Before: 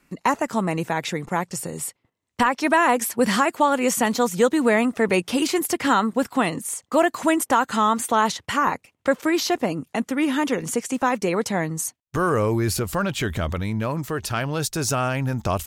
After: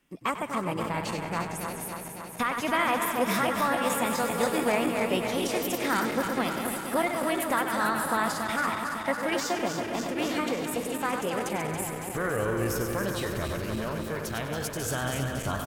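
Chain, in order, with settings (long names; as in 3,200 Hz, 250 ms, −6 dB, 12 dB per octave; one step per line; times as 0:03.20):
feedback delay that plays each chunk backwards 139 ms, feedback 84%, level −6.5 dB
formants moved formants +3 semitones
echo with shifted repeats 97 ms, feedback 44%, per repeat −57 Hz, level −12 dB
level −9 dB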